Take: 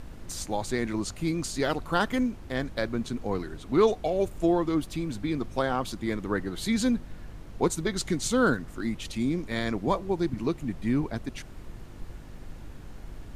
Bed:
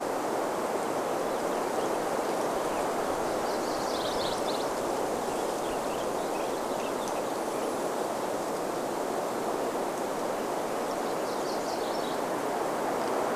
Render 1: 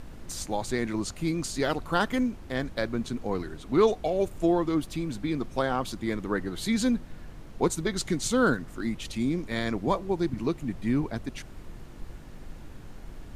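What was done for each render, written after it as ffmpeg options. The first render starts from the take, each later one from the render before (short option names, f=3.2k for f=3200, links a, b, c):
-af "bandreject=f=50:t=h:w=4,bandreject=f=100:t=h:w=4"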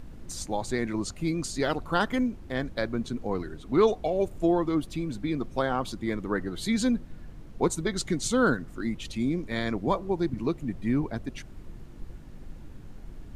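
-af "afftdn=nr=6:nf=-45"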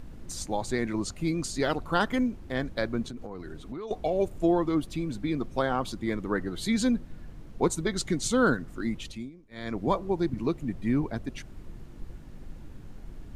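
-filter_complex "[0:a]asettb=1/sr,asplit=3[a][b][c];[a]atrim=end=3.034[d];[b]atrim=start=3.03:end=3.91,asetpts=PTS-STARTPTS,afade=t=in:d=0.004:c=qsin,afade=t=out:st=0.876:d=0.004:c=qsin,acompressor=threshold=-34dB:ratio=10:attack=3.2:release=140:knee=1:detection=peak[e];[c]atrim=start=3.906[f];[d][e]acrossfade=d=0.004:c1=hsin:c2=qsin[g];[g][f]acrossfade=d=0.004:c1=qsin:c2=hsin,asplit=3[h][i][j];[h]atrim=end=9.31,asetpts=PTS-STARTPTS,afade=t=out:st=8.99:d=0.32:silence=0.0841395[k];[i]atrim=start=9.31:end=9.51,asetpts=PTS-STARTPTS,volume=-21.5dB[l];[j]atrim=start=9.51,asetpts=PTS-STARTPTS,afade=t=in:d=0.32:silence=0.0841395[m];[k][l][m]concat=n=3:v=0:a=1"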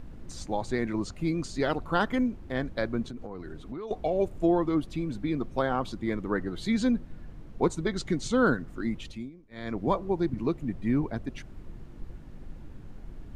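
-filter_complex "[0:a]acrossover=split=8200[a][b];[b]acompressor=threshold=-54dB:ratio=4:attack=1:release=60[c];[a][c]amix=inputs=2:normalize=0,highshelf=f=4.1k:g=-7.5"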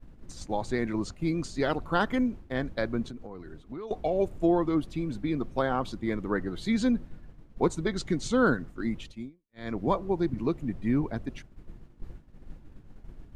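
-af "agate=range=-33dB:threshold=-35dB:ratio=3:detection=peak"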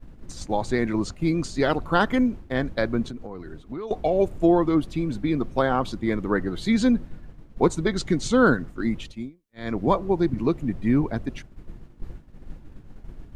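-af "volume=5.5dB"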